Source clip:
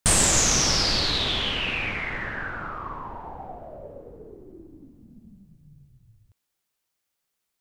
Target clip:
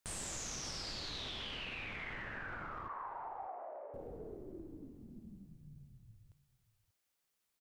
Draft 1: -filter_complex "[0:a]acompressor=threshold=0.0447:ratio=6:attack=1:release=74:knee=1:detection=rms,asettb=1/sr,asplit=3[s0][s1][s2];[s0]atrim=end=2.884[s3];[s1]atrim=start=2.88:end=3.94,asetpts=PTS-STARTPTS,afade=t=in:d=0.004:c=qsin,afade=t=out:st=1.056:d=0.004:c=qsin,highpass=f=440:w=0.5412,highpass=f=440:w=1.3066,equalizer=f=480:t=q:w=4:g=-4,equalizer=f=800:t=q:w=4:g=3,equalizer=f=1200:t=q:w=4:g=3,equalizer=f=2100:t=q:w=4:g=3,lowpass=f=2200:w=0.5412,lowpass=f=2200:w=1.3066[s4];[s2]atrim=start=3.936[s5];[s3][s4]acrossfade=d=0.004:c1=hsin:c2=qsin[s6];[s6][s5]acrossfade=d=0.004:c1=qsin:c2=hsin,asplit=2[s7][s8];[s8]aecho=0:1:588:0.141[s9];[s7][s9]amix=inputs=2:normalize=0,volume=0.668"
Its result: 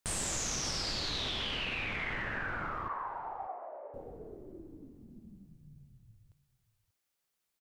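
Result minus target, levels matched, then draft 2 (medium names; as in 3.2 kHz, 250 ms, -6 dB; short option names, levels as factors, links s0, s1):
compression: peak gain reduction -8 dB
-filter_complex "[0:a]acompressor=threshold=0.015:ratio=6:attack=1:release=74:knee=1:detection=rms,asettb=1/sr,asplit=3[s0][s1][s2];[s0]atrim=end=2.884[s3];[s1]atrim=start=2.88:end=3.94,asetpts=PTS-STARTPTS,afade=t=in:d=0.004:c=qsin,afade=t=out:st=1.056:d=0.004:c=qsin,highpass=f=440:w=0.5412,highpass=f=440:w=1.3066,equalizer=f=480:t=q:w=4:g=-4,equalizer=f=800:t=q:w=4:g=3,equalizer=f=1200:t=q:w=4:g=3,equalizer=f=2100:t=q:w=4:g=3,lowpass=f=2200:w=0.5412,lowpass=f=2200:w=1.3066[s4];[s2]atrim=start=3.936[s5];[s3][s4]acrossfade=d=0.004:c1=hsin:c2=qsin[s6];[s6][s5]acrossfade=d=0.004:c1=qsin:c2=hsin,asplit=2[s7][s8];[s8]aecho=0:1:588:0.141[s9];[s7][s9]amix=inputs=2:normalize=0,volume=0.668"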